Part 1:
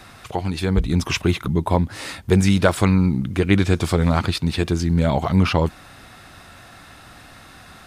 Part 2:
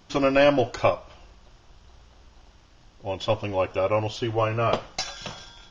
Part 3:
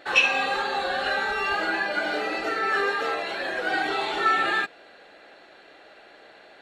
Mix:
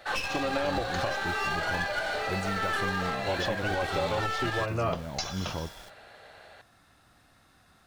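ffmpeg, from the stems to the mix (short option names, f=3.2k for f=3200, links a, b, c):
-filter_complex "[0:a]acrusher=bits=6:mode=log:mix=0:aa=0.000001,volume=-17dB[a];[1:a]acompressor=threshold=-23dB:ratio=6,aeval=exprs='val(0)*gte(abs(val(0)),0.00447)':c=same,adelay=200,volume=0dB[b];[2:a]highpass=f=450:w=0.5412,highpass=f=450:w=1.3066,aeval=exprs='clip(val(0),-1,0.0355)':c=same,volume=-0.5dB[c];[a][b][c]amix=inputs=3:normalize=0,equalizer=f=2.5k:t=o:w=0.77:g=-3,alimiter=limit=-18.5dB:level=0:latency=1:release=332"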